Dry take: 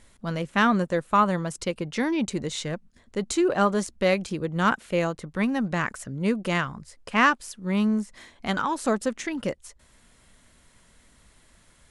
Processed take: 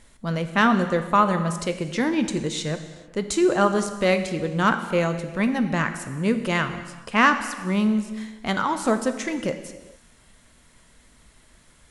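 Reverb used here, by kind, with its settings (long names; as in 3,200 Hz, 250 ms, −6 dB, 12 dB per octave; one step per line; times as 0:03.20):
reverb whose tail is shaped and stops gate 470 ms falling, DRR 8 dB
level +2 dB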